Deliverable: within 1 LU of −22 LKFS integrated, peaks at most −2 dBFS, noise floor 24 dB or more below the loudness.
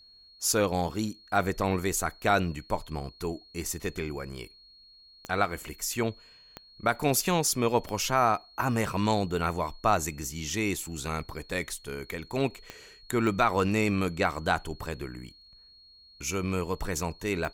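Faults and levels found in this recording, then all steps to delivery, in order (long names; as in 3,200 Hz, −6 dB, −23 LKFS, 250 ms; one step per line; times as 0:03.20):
number of clicks 6; interfering tone 4,300 Hz; level of the tone −53 dBFS; integrated loudness −29.5 LKFS; sample peak −11.5 dBFS; target loudness −22.0 LKFS
→ click removal
notch filter 4,300 Hz, Q 30
level +7.5 dB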